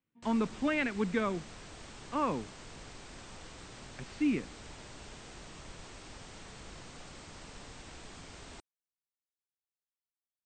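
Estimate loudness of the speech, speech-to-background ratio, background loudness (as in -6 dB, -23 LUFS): -33.0 LUFS, 16.0 dB, -49.0 LUFS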